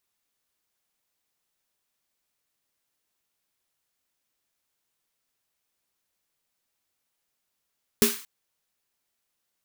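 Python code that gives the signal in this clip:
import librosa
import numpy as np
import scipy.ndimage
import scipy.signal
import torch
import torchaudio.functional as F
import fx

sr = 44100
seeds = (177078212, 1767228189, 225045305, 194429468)

y = fx.drum_snare(sr, seeds[0], length_s=0.23, hz=230.0, second_hz=410.0, noise_db=-3, noise_from_hz=1100.0, decay_s=0.21, noise_decay_s=0.46)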